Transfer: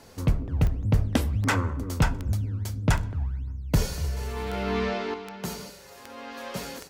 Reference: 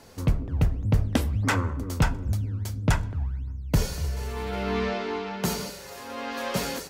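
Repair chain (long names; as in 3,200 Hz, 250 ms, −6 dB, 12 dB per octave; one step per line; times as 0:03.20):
click removal
level correction +6.5 dB, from 0:05.14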